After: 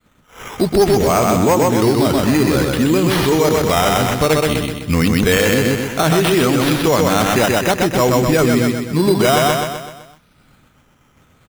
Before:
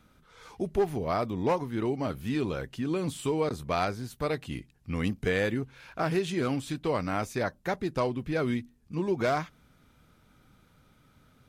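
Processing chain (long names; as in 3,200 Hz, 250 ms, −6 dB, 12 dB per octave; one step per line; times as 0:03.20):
mains-hum notches 50/100 Hz
downward expander −52 dBFS
high-shelf EQ 5,300 Hz +11 dB
sample-and-hold swept by an LFO 8×, swing 60% 0.57 Hz
repeating echo 127 ms, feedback 49%, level −4 dB
boost into a limiter +21 dB
level −4.5 dB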